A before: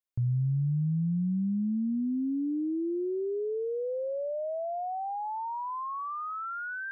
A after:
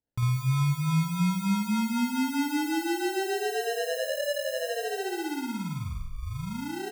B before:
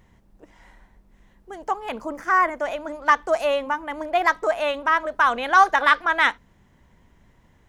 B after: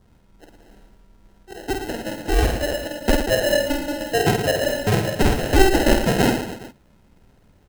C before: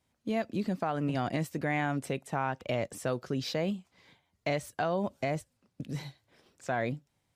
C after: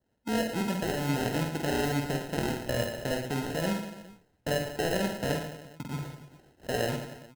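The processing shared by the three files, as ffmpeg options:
-af "acrusher=samples=38:mix=1:aa=0.000001,adynamicequalizer=threshold=0.00316:dfrequency=2400:dqfactor=6.3:tfrequency=2400:tqfactor=6.3:attack=5:release=100:ratio=0.375:range=2:mode=boostabove:tftype=bell,aecho=1:1:50|112.5|190.6|288.3|410.4:0.631|0.398|0.251|0.158|0.1"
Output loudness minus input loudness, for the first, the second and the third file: +2.5, +0.5, +2.0 LU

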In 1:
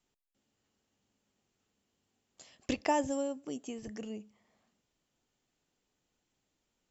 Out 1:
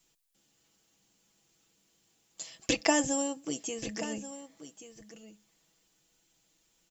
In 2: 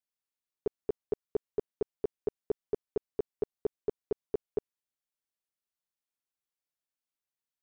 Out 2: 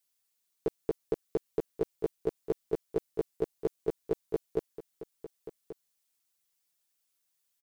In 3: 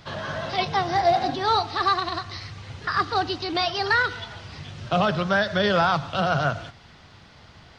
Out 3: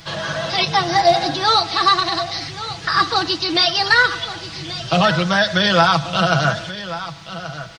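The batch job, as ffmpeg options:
-filter_complex "[0:a]highshelf=frequency=3300:gain=11.5,aecho=1:1:6.1:0.65,asplit=2[link_01][link_02];[link_02]aecho=0:1:1132:0.211[link_03];[link_01][link_03]amix=inputs=2:normalize=0,volume=3dB"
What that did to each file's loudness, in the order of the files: +4.0, +2.0, +6.5 LU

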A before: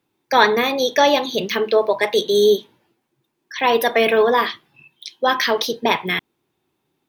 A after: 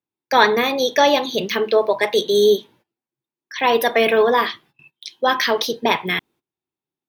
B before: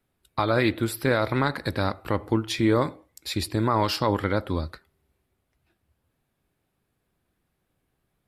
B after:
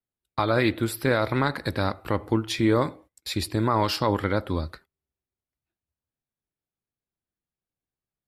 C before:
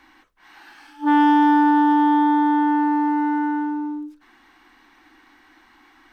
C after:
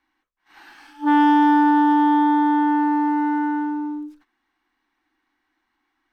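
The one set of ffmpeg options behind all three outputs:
-af "agate=range=-20dB:threshold=-48dB:ratio=16:detection=peak"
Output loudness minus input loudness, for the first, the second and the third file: 0.0, 0.0, 0.0 LU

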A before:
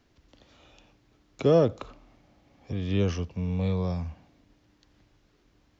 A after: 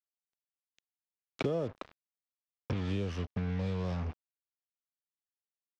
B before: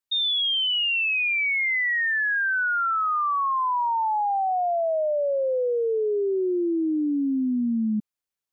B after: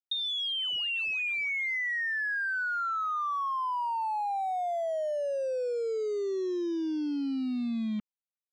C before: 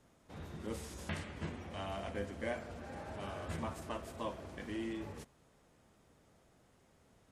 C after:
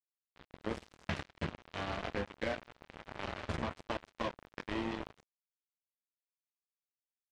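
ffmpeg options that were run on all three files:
-af "acrusher=bits=5:mix=0:aa=0.5,acompressor=threshold=-37dB:ratio=6,lowpass=4500,volume=6dB"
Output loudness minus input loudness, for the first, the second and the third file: −8.5, −7.5, +2.5 LU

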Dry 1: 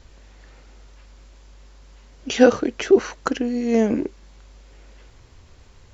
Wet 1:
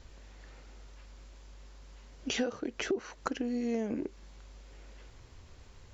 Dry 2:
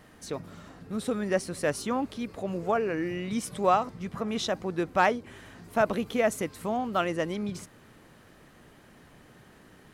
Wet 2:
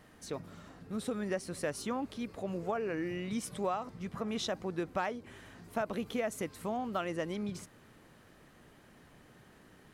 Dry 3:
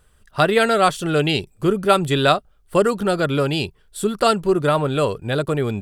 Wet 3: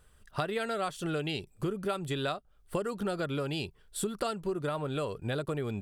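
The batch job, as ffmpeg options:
-af "acompressor=threshold=-25dB:ratio=8,volume=-4.5dB"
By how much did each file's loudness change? −15.0, −7.5, −15.0 LU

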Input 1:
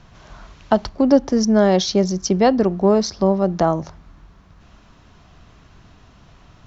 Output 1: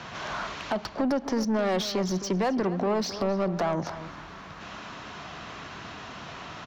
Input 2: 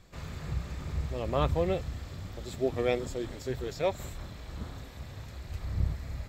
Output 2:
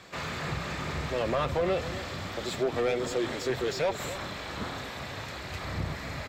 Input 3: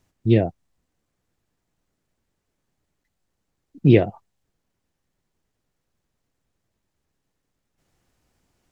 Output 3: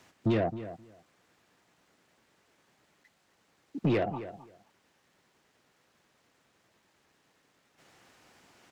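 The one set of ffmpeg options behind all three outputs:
-filter_complex "[0:a]highpass=frequency=130:poles=1,equalizer=frequency=620:width=0.39:gain=-5,asplit=2[link_01][link_02];[link_02]acompressor=threshold=-33dB:ratio=6,volume=-1dB[link_03];[link_01][link_03]amix=inputs=2:normalize=0,alimiter=limit=-16dB:level=0:latency=1:release=362,acrossover=split=170[link_04][link_05];[link_05]acompressor=threshold=-29dB:ratio=2.5[link_06];[link_04][link_06]amix=inputs=2:normalize=0,asplit=2[link_07][link_08];[link_08]highpass=frequency=720:poles=1,volume=24dB,asoftclip=type=tanh:threshold=-14dB[link_09];[link_07][link_09]amix=inputs=2:normalize=0,lowpass=frequency=1800:poles=1,volume=-6dB,asplit=2[link_10][link_11];[link_11]adelay=263,lowpass=frequency=2600:poles=1,volume=-13dB,asplit=2[link_12][link_13];[link_13]adelay=263,lowpass=frequency=2600:poles=1,volume=0.16[link_14];[link_10][link_12][link_14]amix=inputs=3:normalize=0,volume=-3dB"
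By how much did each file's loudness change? −11.0, +2.0, −12.5 LU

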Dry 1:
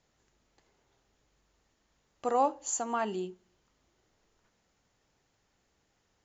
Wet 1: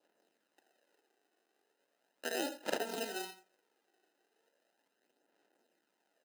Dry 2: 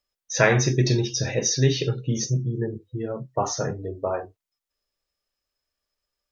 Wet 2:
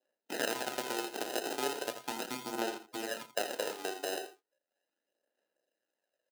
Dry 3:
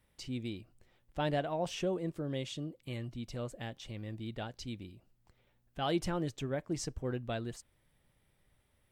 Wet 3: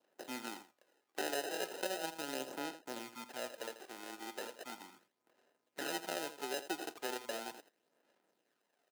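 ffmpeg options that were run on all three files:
-af "acompressor=threshold=-33dB:ratio=2.5,acrusher=samples=39:mix=1:aa=0.000001,aeval=exprs='0.119*(cos(1*acos(clip(val(0)/0.119,-1,1)))-cos(1*PI/2))+0.0335*(cos(4*acos(clip(val(0)/0.119,-1,1)))-cos(4*PI/2))':channel_layout=same,aphaser=in_gain=1:out_gain=1:delay=2.7:decay=0.38:speed=0.37:type=sinusoidal,highpass=frequency=250:width=0.5412,highpass=frequency=250:width=1.3066,lowshelf=frequency=410:gain=-11,aecho=1:1:83:0.237,adynamicequalizer=threshold=0.00141:dfrequency=1900:dqfactor=2.7:tfrequency=1900:tqfactor=2.7:attack=5:release=100:ratio=0.375:range=3.5:mode=cutabove:tftype=bell,volume=1dB"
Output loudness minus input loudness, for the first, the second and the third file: −7.5, −12.5, −4.0 LU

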